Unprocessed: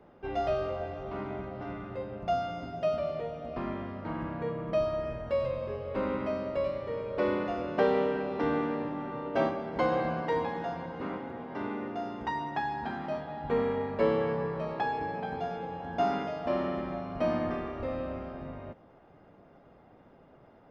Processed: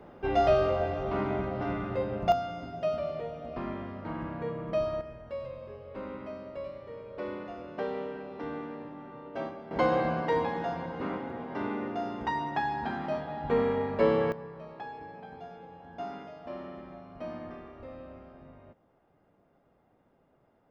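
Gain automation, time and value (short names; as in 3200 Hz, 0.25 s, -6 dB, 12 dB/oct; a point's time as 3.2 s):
+6.5 dB
from 2.32 s -1 dB
from 5.01 s -8.5 dB
from 9.71 s +2 dB
from 14.32 s -10.5 dB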